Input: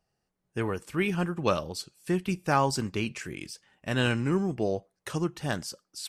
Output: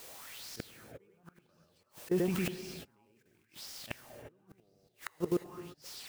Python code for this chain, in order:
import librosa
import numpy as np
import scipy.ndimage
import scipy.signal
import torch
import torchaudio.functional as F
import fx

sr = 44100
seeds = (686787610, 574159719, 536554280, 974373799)

p1 = fx.high_shelf(x, sr, hz=2800.0, db=-6.0)
p2 = fx.sample_hold(p1, sr, seeds[0], rate_hz=5300.0, jitter_pct=0)
p3 = p1 + (p2 * librosa.db_to_amplitude(-12.0))
p4 = fx.dmg_noise_colour(p3, sr, seeds[1], colour='white', level_db=-46.0)
p5 = p4 + 10.0 ** (-3.5 / 20.0) * np.pad(p4, (int(103 * sr / 1000.0), 0))[:len(p4)]
p6 = fx.auto_swell(p5, sr, attack_ms=167.0)
p7 = fx.level_steps(p6, sr, step_db=19)
p8 = fx.gate_flip(p7, sr, shuts_db=-30.0, range_db=-39)
p9 = fx.rev_gated(p8, sr, seeds[2], gate_ms=380, shape='rising', drr_db=7.5)
p10 = fx.bell_lfo(p9, sr, hz=0.94, low_hz=450.0, high_hz=5300.0, db=13)
y = p10 * librosa.db_to_amplitude(6.0)